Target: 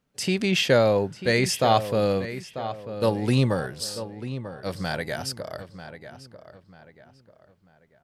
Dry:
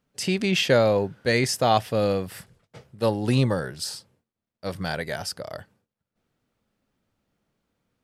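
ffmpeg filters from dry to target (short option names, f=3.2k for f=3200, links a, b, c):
-filter_complex "[0:a]asettb=1/sr,asplit=3[a][b][c];[a]atrim=end=2.254[d];[b]atrim=start=2.25:end=3.02,asetpts=PTS-STARTPTS,afade=t=in:d=0.004:c=qsin,afade=t=out:st=0.766:d=0.004:c=qsin,acompressor=threshold=-57dB:ratio=4[e];[c]atrim=start=3.016[f];[d][e]acrossfade=d=0.004:c1=hsin:c2=qsin[g];[g][f]acrossfade=d=0.004:c1=qsin:c2=hsin,asplit=2[h][i];[i]adelay=942,lowpass=f=3.1k:p=1,volume=-11.5dB,asplit=2[j][k];[k]adelay=942,lowpass=f=3.1k:p=1,volume=0.36,asplit=2[l][m];[m]adelay=942,lowpass=f=3.1k:p=1,volume=0.36,asplit=2[n][o];[o]adelay=942,lowpass=f=3.1k:p=1,volume=0.36[p];[h][j][l][n][p]amix=inputs=5:normalize=0"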